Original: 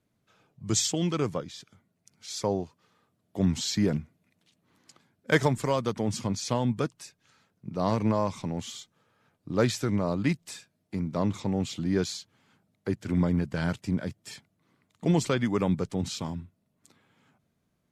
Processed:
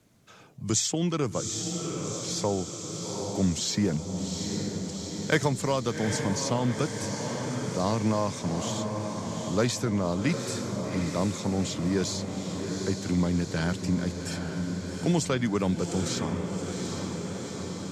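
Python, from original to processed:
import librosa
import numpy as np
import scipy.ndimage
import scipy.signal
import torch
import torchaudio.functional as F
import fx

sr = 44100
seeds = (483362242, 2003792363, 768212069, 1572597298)

y = fx.peak_eq(x, sr, hz=6700.0, db=6.0, octaves=0.97)
y = fx.echo_diffused(y, sr, ms=790, feedback_pct=63, wet_db=-8)
y = fx.band_squash(y, sr, depth_pct=40)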